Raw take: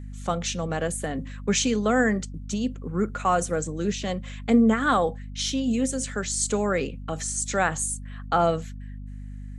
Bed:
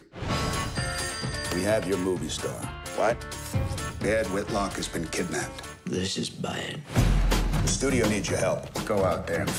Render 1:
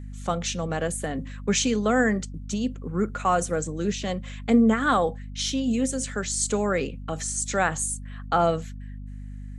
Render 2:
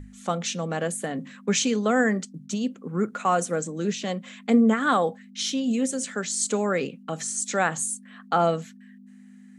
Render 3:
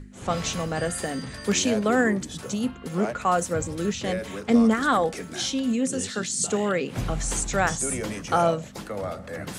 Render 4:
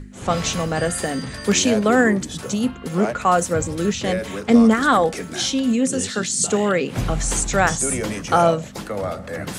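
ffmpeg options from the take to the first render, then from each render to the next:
-af anull
-af "bandreject=f=50:t=h:w=6,bandreject=f=100:t=h:w=6,bandreject=f=150:t=h:w=6"
-filter_complex "[1:a]volume=-7dB[a];[0:a][a]amix=inputs=2:normalize=0"
-af "volume=5.5dB"

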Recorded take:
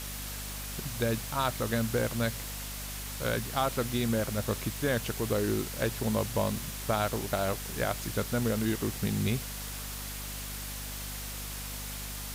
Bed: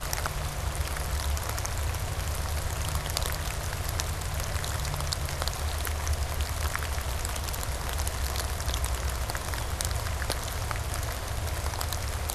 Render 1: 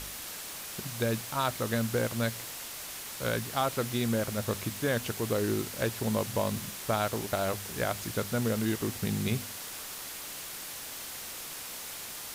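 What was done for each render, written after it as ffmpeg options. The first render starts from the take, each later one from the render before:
-af "bandreject=f=50:t=h:w=4,bandreject=f=100:t=h:w=4,bandreject=f=150:t=h:w=4,bandreject=f=200:t=h:w=4,bandreject=f=250:t=h:w=4"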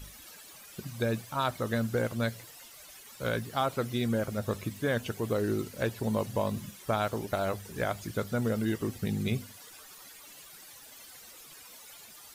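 -af "afftdn=nr=14:nf=-41"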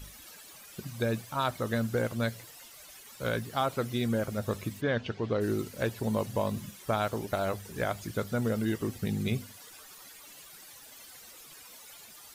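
-filter_complex "[0:a]asplit=3[a][b][c];[a]afade=t=out:st=4.8:d=0.02[d];[b]lowpass=f=4.8k:w=0.5412,lowpass=f=4.8k:w=1.3066,afade=t=in:st=4.8:d=0.02,afade=t=out:st=5.4:d=0.02[e];[c]afade=t=in:st=5.4:d=0.02[f];[d][e][f]amix=inputs=3:normalize=0"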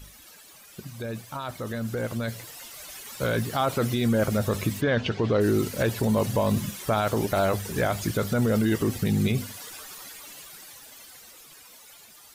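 -af "alimiter=level_in=1.5dB:limit=-24dB:level=0:latency=1:release=19,volume=-1.5dB,dynaudnorm=f=240:g=21:m=11dB"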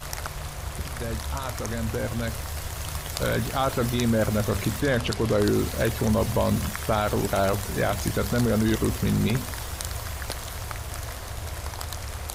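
-filter_complex "[1:a]volume=-2.5dB[a];[0:a][a]amix=inputs=2:normalize=0"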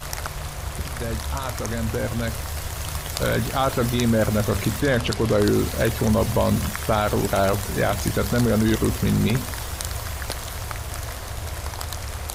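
-af "volume=3dB"

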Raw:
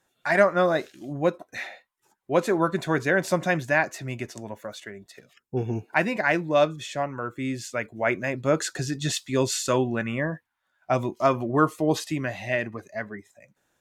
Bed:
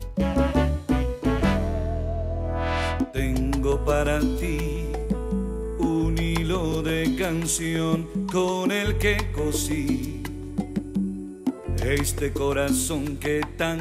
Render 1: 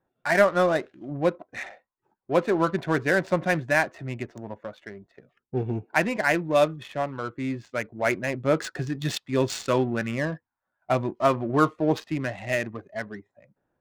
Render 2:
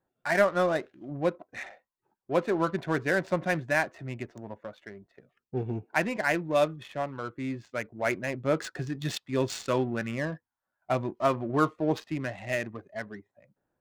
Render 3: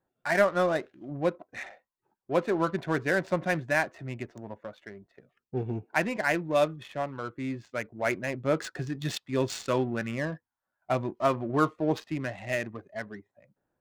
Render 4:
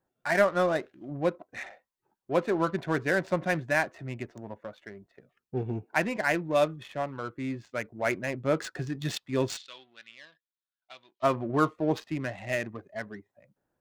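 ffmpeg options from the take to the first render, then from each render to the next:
-af "adynamicsmooth=sensitivity=5:basefreq=1.1k"
-af "volume=-4dB"
-af anull
-filter_complex "[0:a]asplit=3[a][b][c];[a]afade=t=out:st=9.56:d=0.02[d];[b]bandpass=f=3.6k:t=q:w=3.4,afade=t=in:st=9.56:d=0.02,afade=t=out:st=11.22:d=0.02[e];[c]afade=t=in:st=11.22:d=0.02[f];[d][e][f]amix=inputs=3:normalize=0"

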